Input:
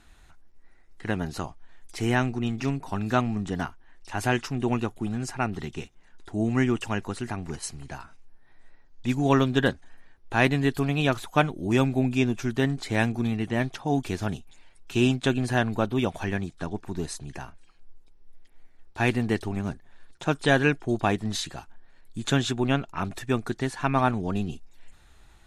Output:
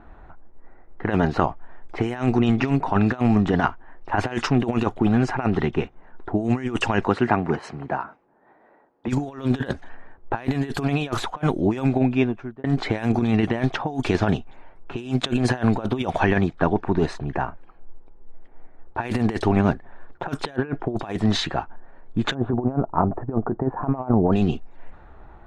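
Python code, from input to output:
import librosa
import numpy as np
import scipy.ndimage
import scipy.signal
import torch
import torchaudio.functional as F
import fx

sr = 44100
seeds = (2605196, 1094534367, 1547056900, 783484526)

y = fx.highpass(x, sr, hz=fx.line((7.06, 93.0), (9.07, 330.0)), slope=12, at=(7.06, 9.07), fade=0.02)
y = fx.lowpass(y, sr, hz=1600.0, slope=12, at=(20.56, 20.97))
y = fx.lowpass(y, sr, hz=1000.0, slope=24, at=(22.33, 24.31), fade=0.02)
y = fx.edit(y, sr, fx.fade_out_span(start_s=11.43, length_s=1.21), tone=tone)
y = fx.env_lowpass(y, sr, base_hz=1000.0, full_db=-19.0)
y = fx.peak_eq(y, sr, hz=750.0, db=7.5, octaves=2.9)
y = fx.over_compress(y, sr, threshold_db=-25.0, ratio=-0.5)
y = y * librosa.db_to_amplitude(4.5)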